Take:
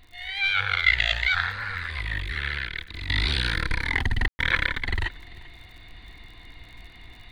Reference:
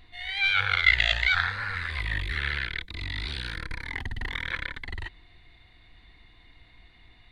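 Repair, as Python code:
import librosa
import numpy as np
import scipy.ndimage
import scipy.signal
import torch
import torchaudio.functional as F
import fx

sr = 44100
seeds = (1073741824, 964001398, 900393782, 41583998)

y = fx.fix_declick_ar(x, sr, threshold=6.5)
y = fx.fix_ambience(y, sr, seeds[0], print_start_s=6.8, print_end_s=7.3, start_s=4.28, end_s=4.39)
y = fx.fix_echo_inverse(y, sr, delay_ms=392, level_db=-21.5)
y = fx.fix_level(y, sr, at_s=3.09, step_db=-9.0)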